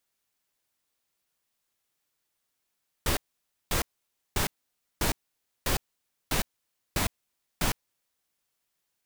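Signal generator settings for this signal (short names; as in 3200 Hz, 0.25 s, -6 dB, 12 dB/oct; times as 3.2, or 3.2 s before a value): noise bursts pink, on 0.11 s, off 0.54 s, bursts 8, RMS -26 dBFS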